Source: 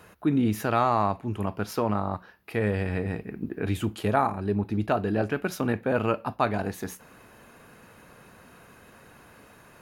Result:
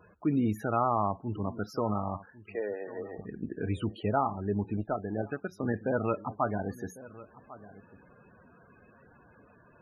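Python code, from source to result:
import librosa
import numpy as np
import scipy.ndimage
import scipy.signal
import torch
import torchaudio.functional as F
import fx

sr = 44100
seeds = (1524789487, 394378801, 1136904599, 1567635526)

y = fx.cabinet(x, sr, low_hz=350.0, low_slope=24, high_hz=3700.0, hz=(780.0, 1800.0, 2600.0), db=(-3, -5, -8), at=(2.52, 3.17), fade=0.02)
y = y + 10.0 ** (-18.5 / 20.0) * np.pad(y, (int(1099 * sr / 1000.0), 0))[:len(y)]
y = fx.power_curve(y, sr, exponent=1.4, at=(4.77, 5.63))
y = fx.spec_topn(y, sr, count=32)
y = y * 10.0 ** (-4.0 / 20.0)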